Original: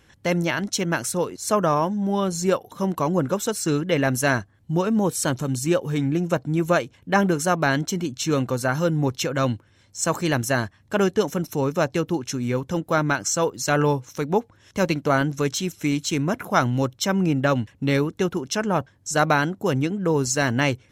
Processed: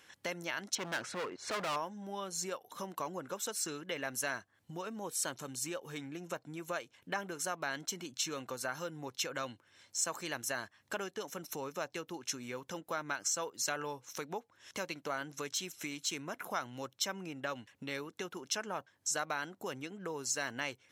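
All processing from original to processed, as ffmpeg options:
ffmpeg -i in.wav -filter_complex "[0:a]asettb=1/sr,asplit=3[link_01][link_02][link_03];[link_01]atrim=end=0.754[link_04];[link_02]atrim=start=0.75:end=1.76,asetpts=PTS-STARTPTS,afade=type=in:duration=0.004:curve=qsin,afade=type=out:start_time=1.006:duration=0.004:curve=qsin,lowpass=2200,acontrast=57,asoftclip=type=hard:threshold=-22dB[link_05];[link_03]atrim=start=1.756[link_06];[link_04][link_05]acrossfade=duration=0.004:curve1=hsin:curve2=qsin[link_07];[link_07][link_06]acrossfade=duration=0.004:curve1=qsin:curve2=hsin,acompressor=threshold=-32dB:ratio=4,highpass=frequency=940:poles=1" out.wav

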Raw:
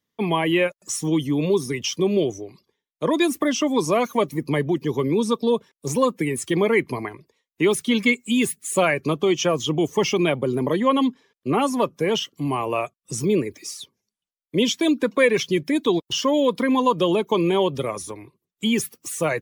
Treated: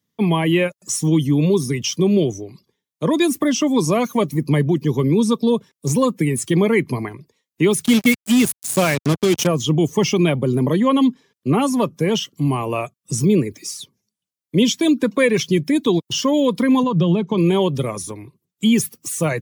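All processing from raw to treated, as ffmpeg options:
ffmpeg -i in.wav -filter_complex "[0:a]asettb=1/sr,asplit=3[link_01][link_02][link_03];[link_01]atrim=end=7.854[link_04];[link_02]atrim=start=7.85:end=9.47,asetpts=PTS-STARTPTS,afade=type=in:duration=0.004:curve=qsin,afade=type=out:start_time=1.616:duration=0.004:curve=qsin,acompressor=mode=upward:threshold=-24dB:ratio=2.5:attack=3.2:release=140:knee=2.83:detection=peak,acrusher=bits=3:mix=0:aa=0.5[link_05];[link_03]atrim=start=9.466[link_06];[link_04][link_05]acrossfade=duration=0.004:curve1=hsin:curve2=qsin[link_07];[link_07][link_06]acrossfade=duration=0.004:curve1=qsin:curve2=hsin,asettb=1/sr,asplit=3[link_08][link_09][link_10];[link_08]atrim=end=16.834[link_11];[link_09]atrim=start=16.83:end=17.38,asetpts=PTS-STARTPTS,afade=type=in:duration=0.004:curve=qsin,afade=type=out:start_time=0.546:duration=0.004:curve=qsin,lowpass=4500,equalizer=frequency=160:width=1.9:gain=10.5,acompressor=threshold=-26dB:ratio=1.5:attack=3.2:release=140:knee=1:detection=peak[link_12];[link_10]atrim=start=17.376[link_13];[link_11][link_12]acrossfade=duration=0.004:curve1=hsin:curve2=qsin[link_14];[link_14][link_13]acrossfade=duration=0.004:curve1=qsin:curve2=hsin,highpass=110,bass=frequency=250:gain=12,treble=frequency=4000:gain=5" out.wav

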